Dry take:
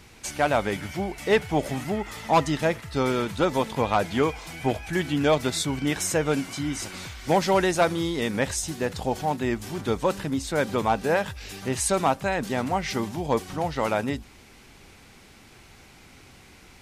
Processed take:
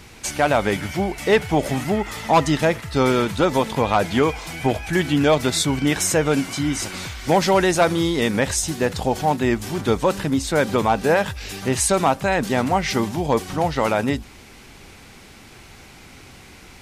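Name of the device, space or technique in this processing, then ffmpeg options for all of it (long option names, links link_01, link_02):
clipper into limiter: -af "asoftclip=type=hard:threshold=-12.5dB,alimiter=limit=-15dB:level=0:latency=1,volume=6.5dB"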